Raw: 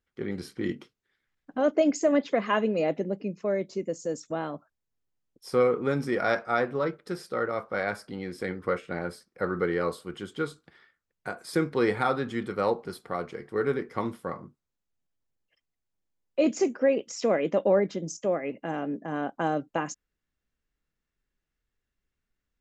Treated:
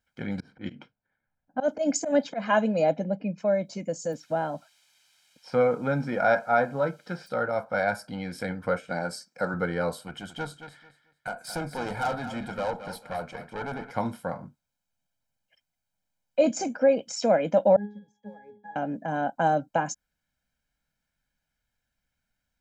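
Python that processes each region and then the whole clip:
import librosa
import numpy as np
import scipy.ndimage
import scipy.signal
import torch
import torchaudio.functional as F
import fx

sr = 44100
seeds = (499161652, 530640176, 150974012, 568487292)

y = fx.chain(x, sr, fx.env_lowpass(base_hz=930.0, full_db=-19.5),
    fx.high_shelf(hz=6500.0, db=7.0),
    fx.auto_swell(attack_ms=116.0), at=(0.4, 3.38))
y = fx.dmg_noise_colour(y, sr, seeds[0], colour='violet', level_db=-49.0, at=(4.12, 7.26), fade=0.02)
y = fx.bandpass_edges(y, sr, low_hz=100.0, high_hz=3300.0, at=(4.12, 7.26), fade=0.02)
y = fx.chain(y, sr, fx.highpass(hz=150.0, slope=12),
    fx.band_shelf(hz=6100.0, db=9.0, octaves=1.1), at=(8.89, 9.54))
y = fx.chain(y, sr, fx.tube_stage(drive_db=27.0, bias=0.5),
    fx.echo_feedback(ms=221, feedback_pct=24, wet_db=-12.5), at=(10.07, 13.91))
y = fx.chain(y, sr, fx.block_float(bits=5),
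    fx.octave_resonator(note='G#', decay_s=0.34), at=(17.76, 18.76))
y = fx.low_shelf(y, sr, hz=85.0, db=-11.0)
y = y + 0.84 * np.pad(y, (int(1.3 * sr / 1000.0), 0))[:len(y)]
y = fx.dynamic_eq(y, sr, hz=2500.0, q=0.78, threshold_db=-44.0, ratio=4.0, max_db=-7)
y = y * librosa.db_to_amplitude(3.0)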